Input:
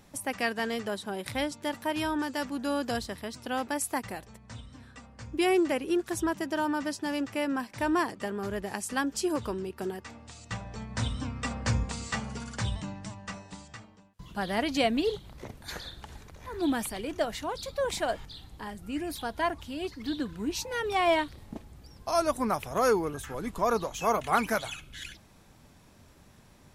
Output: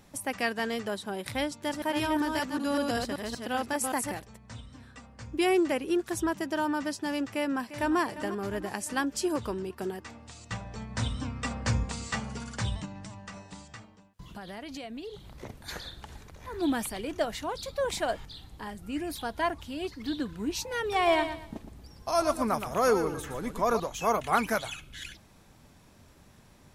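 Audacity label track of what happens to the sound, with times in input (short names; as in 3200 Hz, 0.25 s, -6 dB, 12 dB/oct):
1.440000	4.220000	reverse delay 0.191 s, level -3 dB
7.330000	7.990000	echo throw 0.35 s, feedback 60%, level -13 dB
12.850000	15.340000	compressor, threshold -38 dBFS
20.810000	23.800000	feedback echo 0.117 s, feedback 28%, level -9.5 dB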